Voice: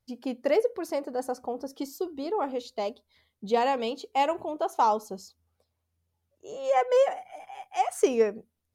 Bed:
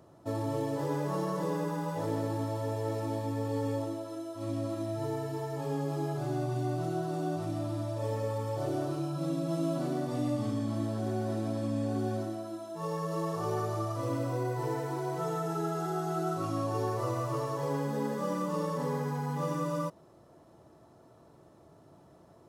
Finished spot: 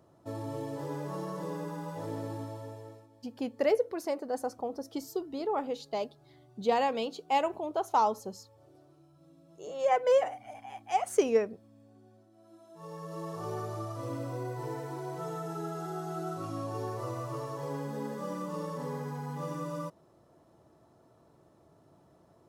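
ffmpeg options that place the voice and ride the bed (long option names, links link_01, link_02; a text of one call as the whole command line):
ffmpeg -i stem1.wav -i stem2.wav -filter_complex "[0:a]adelay=3150,volume=-2.5dB[link_01];[1:a]volume=17.5dB,afade=type=out:start_time=2.32:duration=0.76:silence=0.0794328,afade=type=in:start_time=12.31:duration=1.16:silence=0.0749894[link_02];[link_01][link_02]amix=inputs=2:normalize=0" out.wav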